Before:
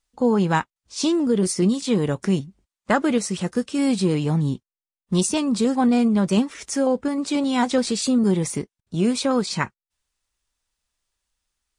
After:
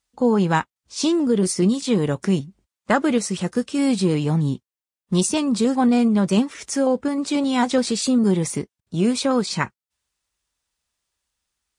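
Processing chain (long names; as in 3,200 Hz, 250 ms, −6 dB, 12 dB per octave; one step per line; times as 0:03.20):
high-pass filter 51 Hz
level +1 dB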